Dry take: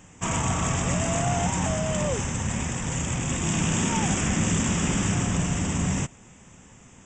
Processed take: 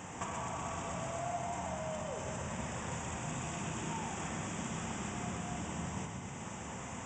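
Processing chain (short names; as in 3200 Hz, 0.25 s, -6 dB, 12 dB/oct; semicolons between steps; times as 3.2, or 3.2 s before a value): HPF 51 Hz; bell 830 Hz +8.5 dB 1.9 oct; compressor 16:1, threshold -41 dBFS, peak gain reduction 24.5 dB; thinning echo 0.125 s, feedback 82%, high-pass 830 Hz, level -6 dB; on a send at -3 dB: reverb RT60 2.7 s, pre-delay 3 ms; on the sum: gain +2 dB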